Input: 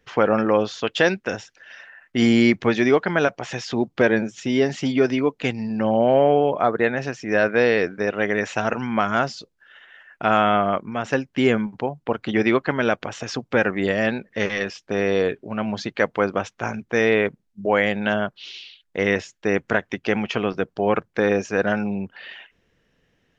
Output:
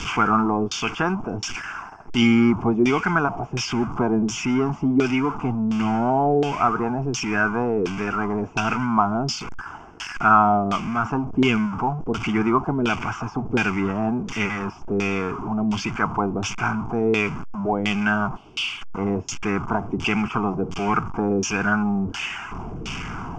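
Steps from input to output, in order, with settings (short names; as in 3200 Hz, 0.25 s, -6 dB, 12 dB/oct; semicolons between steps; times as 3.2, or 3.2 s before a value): zero-crossing step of -23.5 dBFS; resonant high shelf 4600 Hz +9 dB, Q 1.5; fixed phaser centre 2700 Hz, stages 8; LFO low-pass saw down 1.4 Hz 410–3500 Hz; gain +1 dB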